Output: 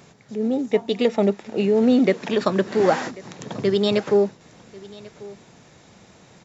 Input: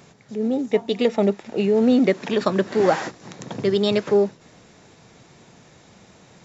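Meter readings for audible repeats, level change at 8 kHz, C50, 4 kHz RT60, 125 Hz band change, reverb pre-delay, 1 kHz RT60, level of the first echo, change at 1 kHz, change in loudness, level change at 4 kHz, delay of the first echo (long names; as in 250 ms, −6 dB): 1, can't be measured, no reverb audible, no reverb audible, 0.0 dB, no reverb audible, no reverb audible, −21.0 dB, 0.0 dB, 0.0 dB, 0.0 dB, 1,091 ms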